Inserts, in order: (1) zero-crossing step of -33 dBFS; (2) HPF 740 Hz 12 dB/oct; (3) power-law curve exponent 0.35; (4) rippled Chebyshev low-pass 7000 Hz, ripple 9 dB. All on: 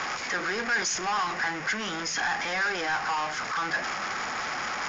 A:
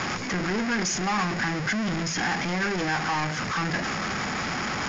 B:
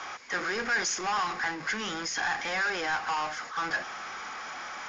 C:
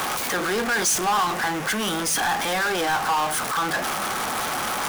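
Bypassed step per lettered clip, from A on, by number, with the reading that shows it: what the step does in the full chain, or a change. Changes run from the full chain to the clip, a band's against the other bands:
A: 2, 125 Hz band +14.5 dB; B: 1, distortion -13 dB; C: 4, 2 kHz band -7.0 dB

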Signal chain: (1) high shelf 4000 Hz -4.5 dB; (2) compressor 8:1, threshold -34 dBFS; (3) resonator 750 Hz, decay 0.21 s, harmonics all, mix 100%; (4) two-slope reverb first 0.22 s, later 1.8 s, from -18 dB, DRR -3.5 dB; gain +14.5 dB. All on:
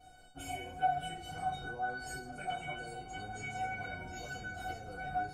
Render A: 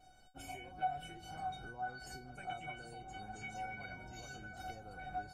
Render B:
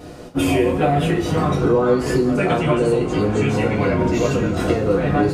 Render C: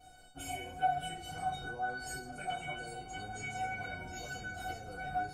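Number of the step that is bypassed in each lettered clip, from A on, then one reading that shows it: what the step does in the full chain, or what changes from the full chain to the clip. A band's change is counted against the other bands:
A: 4, loudness change -6.0 LU; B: 3, 250 Hz band +16.5 dB; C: 1, 8 kHz band +3.5 dB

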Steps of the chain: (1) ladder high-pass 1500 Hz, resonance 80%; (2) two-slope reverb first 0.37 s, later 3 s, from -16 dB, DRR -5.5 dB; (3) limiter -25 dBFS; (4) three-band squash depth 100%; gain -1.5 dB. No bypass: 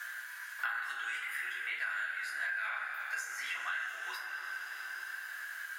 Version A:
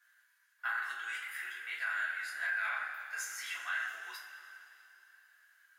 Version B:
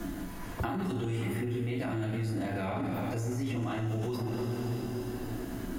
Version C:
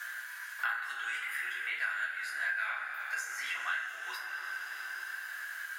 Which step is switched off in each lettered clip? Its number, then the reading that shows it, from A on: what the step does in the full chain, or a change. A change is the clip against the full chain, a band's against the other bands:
4, crest factor change -4.0 dB; 1, 500 Hz band +26.0 dB; 3, loudness change +1.5 LU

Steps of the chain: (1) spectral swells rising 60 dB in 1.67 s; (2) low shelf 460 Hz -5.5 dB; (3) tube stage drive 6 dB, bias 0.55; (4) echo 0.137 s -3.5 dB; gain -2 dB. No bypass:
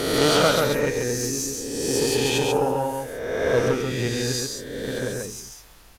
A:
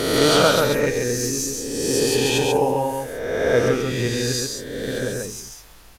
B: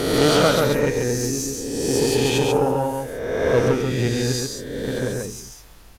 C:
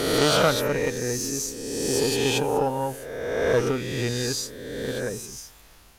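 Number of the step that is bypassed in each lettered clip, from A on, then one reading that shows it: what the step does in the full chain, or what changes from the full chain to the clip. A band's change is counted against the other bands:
3, loudness change +2.5 LU; 2, 125 Hz band +4.0 dB; 4, momentary loudness spread change +1 LU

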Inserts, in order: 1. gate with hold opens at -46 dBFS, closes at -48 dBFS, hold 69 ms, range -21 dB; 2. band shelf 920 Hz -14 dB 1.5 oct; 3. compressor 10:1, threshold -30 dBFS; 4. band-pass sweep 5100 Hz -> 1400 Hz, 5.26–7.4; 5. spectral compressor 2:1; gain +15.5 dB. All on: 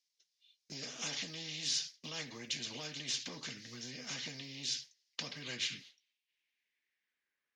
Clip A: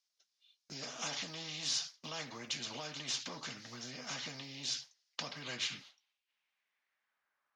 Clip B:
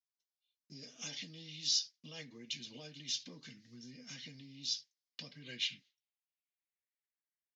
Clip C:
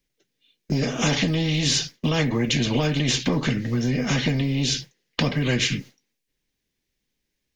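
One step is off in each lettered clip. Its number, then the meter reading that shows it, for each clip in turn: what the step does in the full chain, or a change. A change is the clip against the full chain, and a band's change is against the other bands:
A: 2, 1 kHz band +7.0 dB; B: 5, 1 kHz band -8.5 dB; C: 4, 8 kHz band -11.5 dB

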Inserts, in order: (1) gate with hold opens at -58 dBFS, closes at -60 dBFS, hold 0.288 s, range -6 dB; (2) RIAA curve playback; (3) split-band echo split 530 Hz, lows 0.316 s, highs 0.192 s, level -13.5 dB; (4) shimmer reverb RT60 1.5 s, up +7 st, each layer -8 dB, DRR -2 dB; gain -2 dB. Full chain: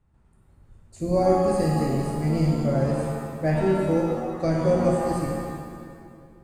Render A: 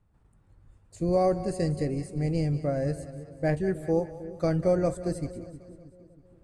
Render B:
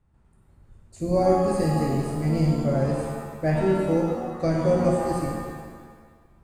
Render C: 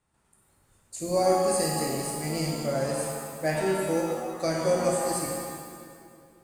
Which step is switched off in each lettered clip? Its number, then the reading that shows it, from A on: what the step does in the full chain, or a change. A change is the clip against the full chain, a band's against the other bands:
4, loudness change -4.5 LU; 3, momentary loudness spread change -1 LU; 2, 8 kHz band +14.0 dB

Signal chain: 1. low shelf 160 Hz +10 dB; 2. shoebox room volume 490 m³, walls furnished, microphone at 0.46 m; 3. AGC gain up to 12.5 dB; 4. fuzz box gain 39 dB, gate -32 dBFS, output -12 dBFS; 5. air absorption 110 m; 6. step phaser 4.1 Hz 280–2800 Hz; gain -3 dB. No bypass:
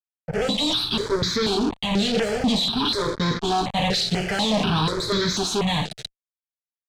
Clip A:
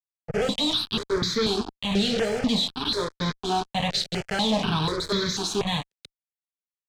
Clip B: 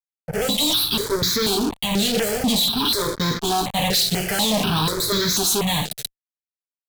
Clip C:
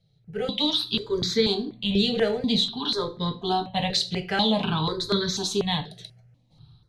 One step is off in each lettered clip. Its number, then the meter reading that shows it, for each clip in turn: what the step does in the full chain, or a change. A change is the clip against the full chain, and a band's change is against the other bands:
3, crest factor change +2.0 dB; 5, 8 kHz band +9.5 dB; 4, distortion -3 dB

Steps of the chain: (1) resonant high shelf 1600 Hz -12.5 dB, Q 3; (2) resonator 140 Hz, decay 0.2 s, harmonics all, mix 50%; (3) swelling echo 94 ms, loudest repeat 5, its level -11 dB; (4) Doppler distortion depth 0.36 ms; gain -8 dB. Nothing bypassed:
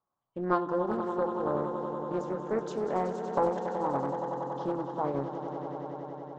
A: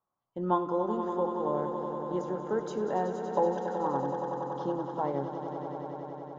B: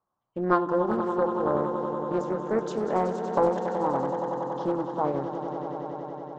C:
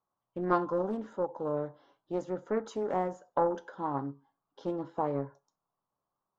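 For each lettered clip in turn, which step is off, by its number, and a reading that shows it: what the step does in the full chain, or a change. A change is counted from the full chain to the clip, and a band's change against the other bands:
4, 2 kHz band -3.0 dB; 2, loudness change +4.5 LU; 3, loudness change -1.5 LU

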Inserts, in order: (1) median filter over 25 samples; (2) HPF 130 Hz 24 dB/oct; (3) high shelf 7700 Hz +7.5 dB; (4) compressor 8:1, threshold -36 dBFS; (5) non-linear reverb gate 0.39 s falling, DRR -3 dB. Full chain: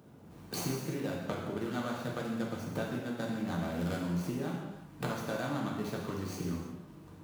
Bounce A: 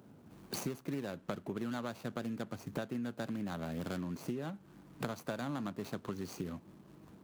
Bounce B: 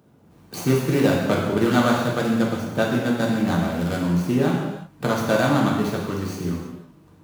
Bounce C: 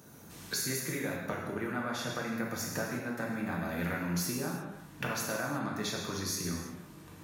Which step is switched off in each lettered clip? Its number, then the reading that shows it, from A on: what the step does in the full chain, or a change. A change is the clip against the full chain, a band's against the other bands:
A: 5, momentary loudness spread change +4 LU; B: 4, mean gain reduction 11.5 dB; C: 1, 8 kHz band +9.5 dB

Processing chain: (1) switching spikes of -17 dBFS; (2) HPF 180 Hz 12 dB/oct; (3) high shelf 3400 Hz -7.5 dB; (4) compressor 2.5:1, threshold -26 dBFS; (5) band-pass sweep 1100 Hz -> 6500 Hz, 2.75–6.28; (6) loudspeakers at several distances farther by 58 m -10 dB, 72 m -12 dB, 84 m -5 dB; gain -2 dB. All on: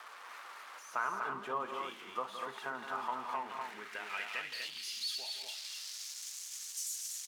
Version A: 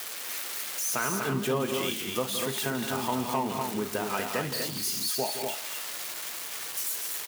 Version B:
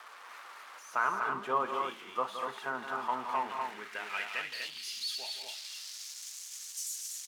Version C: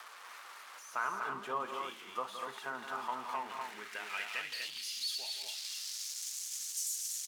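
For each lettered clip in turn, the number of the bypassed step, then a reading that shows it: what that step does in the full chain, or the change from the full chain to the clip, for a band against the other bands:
5, 125 Hz band +17.5 dB; 4, momentary loudness spread change +3 LU; 3, 8 kHz band +3.5 dB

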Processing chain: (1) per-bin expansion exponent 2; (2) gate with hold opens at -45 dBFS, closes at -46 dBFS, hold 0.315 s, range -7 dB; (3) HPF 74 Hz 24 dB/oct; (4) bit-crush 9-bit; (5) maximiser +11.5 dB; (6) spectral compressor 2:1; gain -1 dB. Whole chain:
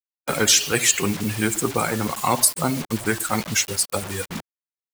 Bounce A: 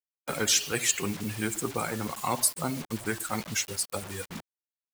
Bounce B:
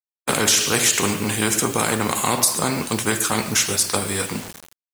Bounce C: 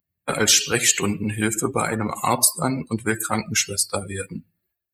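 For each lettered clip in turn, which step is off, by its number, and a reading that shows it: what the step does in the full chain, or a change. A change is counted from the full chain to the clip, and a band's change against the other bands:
5, loudness change -8.0 LU; 1, momentary loudness spread change -4 LU; 4, distortion -30 dB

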